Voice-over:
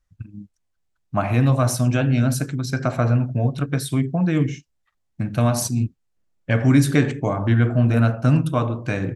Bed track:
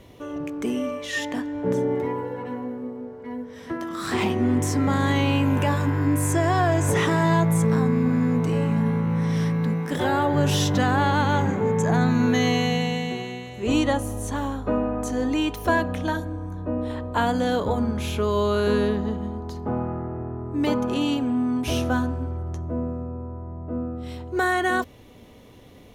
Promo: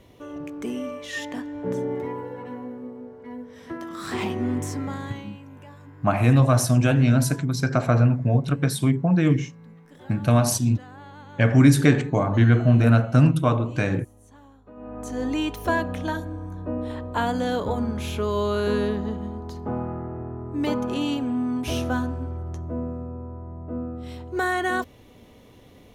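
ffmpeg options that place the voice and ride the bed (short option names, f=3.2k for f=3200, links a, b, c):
-filter_complex "[0:a]adelay=4900,volume=0.5dB[a];[1:a]volume=17dB,afade=t=out:st=4.49:d=0.82:silence=0.112202,afade=t=in:st=14.75:d=0.52:silence=0.0891251[b];[a][b]amix=inputs=2:normalize=0"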